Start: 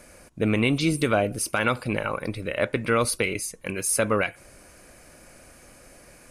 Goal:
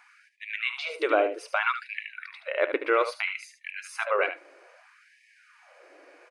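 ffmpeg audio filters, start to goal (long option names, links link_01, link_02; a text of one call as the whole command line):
ffmpeg -i in.wav -af "lowpass=2800,aecho=1:1:74:0.316,afftfilt=real='re*gte(b*sr/1024,260*pow(1700/260,0.5+0.5*sin(2*PI*0.62*pts/sr)))':imag='im*gte(b*sr/1024,260*pow(1700/260,0.5+0.5*sin(2*PI*0.62*pts/sr)))':win_size=1024:overlap=0.75" out.wav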